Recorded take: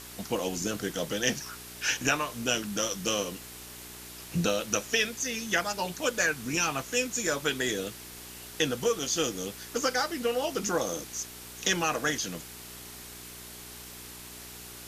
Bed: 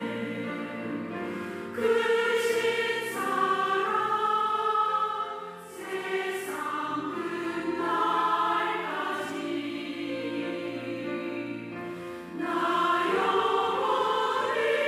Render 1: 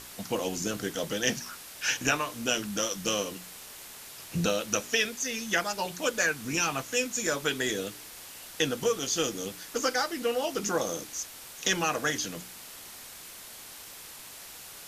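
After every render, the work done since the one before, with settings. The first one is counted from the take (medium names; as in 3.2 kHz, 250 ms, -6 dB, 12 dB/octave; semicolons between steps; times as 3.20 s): de-hum 60 Hz, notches 7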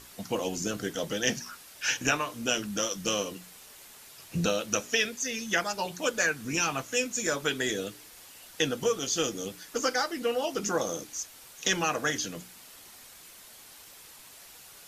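noise reduction 6 dB, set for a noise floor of -46 dBFS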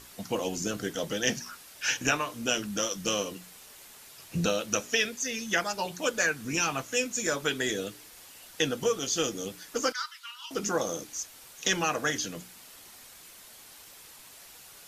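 9.92–10.51 s: rippled Chebyshev high-pass 940 Hz, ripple 9 dB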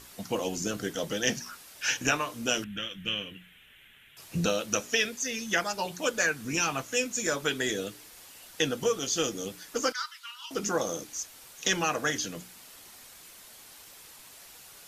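2.64–4.17 s: FFT filter 130 Hz 0 dB, 360 Hz -10 dB, 620 Hz -14 dB, 1.1 kHz -14 dB, 1.6 kHz +1 dB, 3.3 kHz +3 dB, 4.6 kHz -28 dB, 14 kHz -14 dB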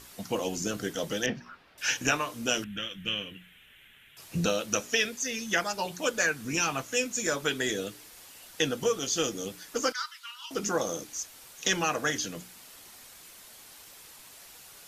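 1.26–1.78 s: distance through air 370 m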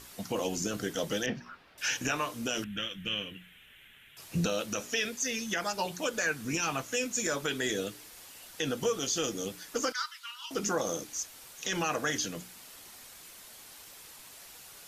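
peak limiter -20 dBFS, peak gain reduction 9.5 dB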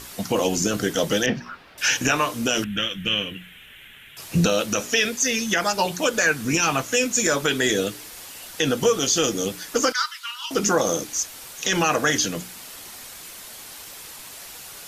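trim +10.5 dB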